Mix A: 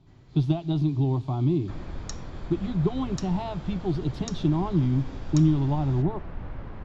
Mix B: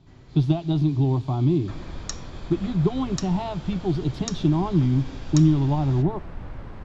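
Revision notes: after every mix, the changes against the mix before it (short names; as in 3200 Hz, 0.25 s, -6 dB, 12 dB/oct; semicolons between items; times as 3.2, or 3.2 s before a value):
speech +3.0 dB; first sound +6.5 dB; second sound: remove air absorption 120 m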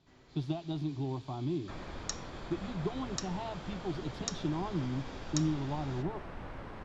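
speech -9.0 dB; first sound -4.5 dB; master: add low shelf 180 Hz -11.5 dB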